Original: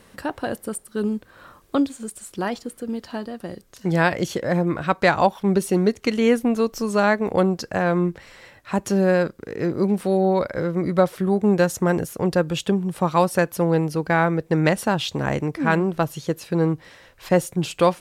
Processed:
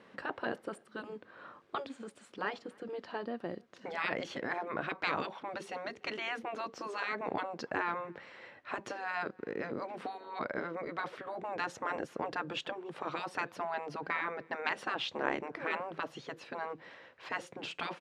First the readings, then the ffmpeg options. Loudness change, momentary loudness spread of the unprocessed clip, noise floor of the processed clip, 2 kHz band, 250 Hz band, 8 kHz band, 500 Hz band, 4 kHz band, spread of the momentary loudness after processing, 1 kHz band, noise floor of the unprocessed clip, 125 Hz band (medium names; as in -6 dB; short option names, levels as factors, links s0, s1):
-16.5 dB, 10 LU, -62 dBFS, -10.0 dB, -23.0 dB, -22.0 dB, -18.5 dB, -10.0 dB, 10 LU, -12.0 dB, -53 dBFS, -28.5 dB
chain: -filter_complex "[0:a]afftfilt=real='re*lt(hypot(re,im),0.282)':imag='im*lt(hypot(re,im),0.282)':win_size=1024:overlap=0.75,highpass=210,lowpass=2900,asplit=2[s0][s1];[s1]adelay=291.5,volume=0.0398,highshelf=f=4000:g=-6.56[s2];[s0][s2]amix=inputs=2:normalize=0,volume=0.596"